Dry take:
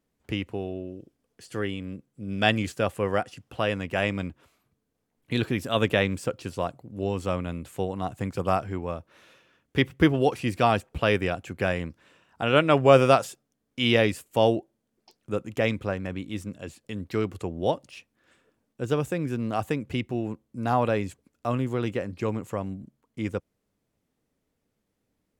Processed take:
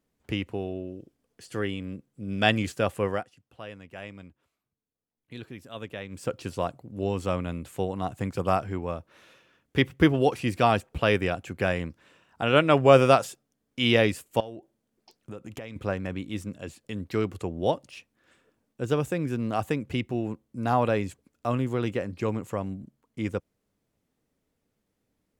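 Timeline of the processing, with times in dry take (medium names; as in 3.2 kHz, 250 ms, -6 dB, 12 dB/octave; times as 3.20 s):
3.05–6.33 s: dip -15 dB, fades 0.24 s
14.40–15.76 s: compression 8:1, threshold -35 dBFS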